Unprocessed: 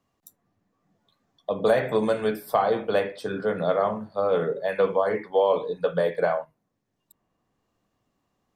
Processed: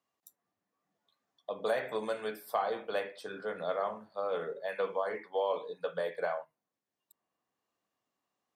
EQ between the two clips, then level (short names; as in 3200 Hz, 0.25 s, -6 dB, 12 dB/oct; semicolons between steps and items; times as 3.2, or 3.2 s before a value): HPF 650 Hz 6 dB/oct; -7.0 dB